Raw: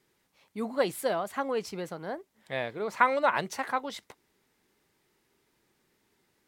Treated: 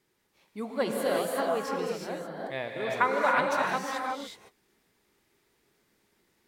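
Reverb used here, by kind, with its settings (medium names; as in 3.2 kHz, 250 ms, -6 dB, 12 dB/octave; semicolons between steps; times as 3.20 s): gated-style reverb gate 390 ms rising, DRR -2 dB; trim -2.5 dB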